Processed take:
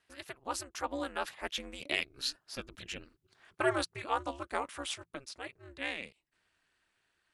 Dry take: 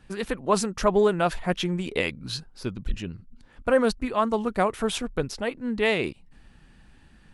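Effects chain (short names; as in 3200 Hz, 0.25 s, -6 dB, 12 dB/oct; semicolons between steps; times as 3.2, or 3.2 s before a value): Doppler pass-by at 2.99, 12 m/s, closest 10 m; HPF 1300 Hz 6 dB/oct; ring modulator 140 Hz; gain +4 dB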